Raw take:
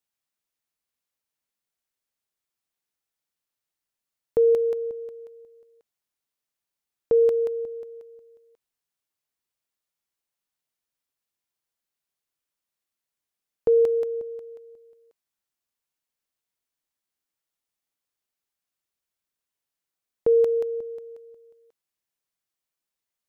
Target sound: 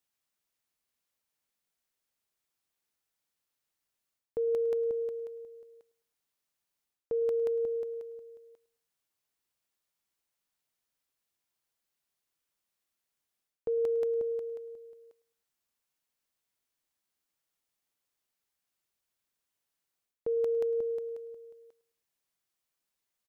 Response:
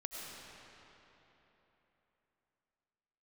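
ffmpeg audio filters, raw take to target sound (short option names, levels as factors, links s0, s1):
-af "areverse,acompressor=threshold=0.0282:ratio=6,areverse,aecho=1:1:106|212|318:0.0891|0.0321|0.0116,volume=1.19"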